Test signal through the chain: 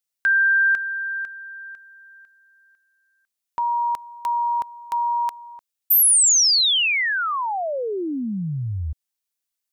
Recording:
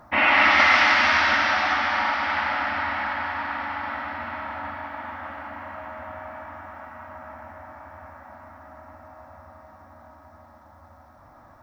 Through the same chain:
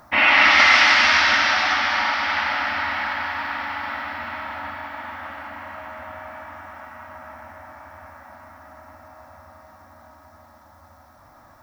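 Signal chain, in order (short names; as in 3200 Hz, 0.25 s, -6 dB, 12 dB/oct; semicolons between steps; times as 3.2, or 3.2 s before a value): high shelf 2500 Hz +11.5 dB; gain -1 dB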